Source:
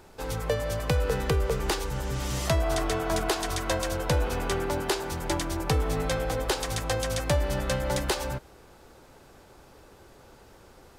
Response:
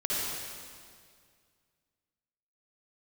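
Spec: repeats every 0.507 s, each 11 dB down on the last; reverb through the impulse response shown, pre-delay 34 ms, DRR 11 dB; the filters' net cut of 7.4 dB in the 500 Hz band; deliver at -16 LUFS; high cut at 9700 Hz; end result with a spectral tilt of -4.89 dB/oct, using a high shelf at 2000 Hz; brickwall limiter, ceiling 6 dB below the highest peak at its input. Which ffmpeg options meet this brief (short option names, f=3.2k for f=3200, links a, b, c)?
-filter_complex "[0:a]lowpass=9.7k,equalizer=f=500:t=o:g=-9,highshelf=f=2k:g=-4,alimiter=limit=-22.5dB:level=0:latency=1,aecho=1:1:507|1014|1521:0.282|0.0789|0.0221,asplit=2[a][b];[1:a]atrim=start_sample=2205,adelay=34[c];[b][c]afir=irnorm=-1:irlink=0,volume=-19.5dB[d];[a][d]amix=inputs=2:normalize=0,volume=16.5dB"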